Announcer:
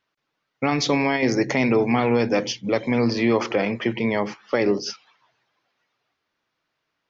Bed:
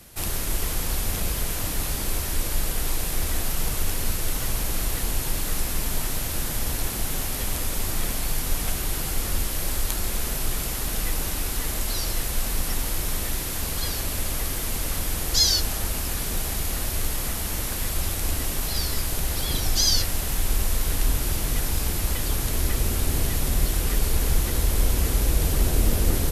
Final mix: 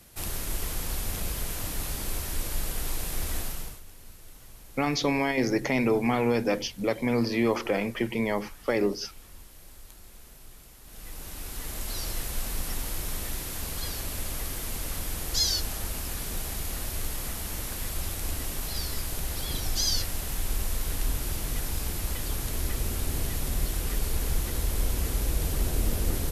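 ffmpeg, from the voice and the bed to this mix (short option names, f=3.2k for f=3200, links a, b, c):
-filter_complex "[0:a]adelay=4150,volume=-5dB[a];[1:a]volume=11.5dB,afade=t=out:st=3.38:d=0.43:silence=0.133352,afade=t=in:st=10.83:d=1.21:silence=0.141254[b];[a][b]amix=inputs=2:normalize=0"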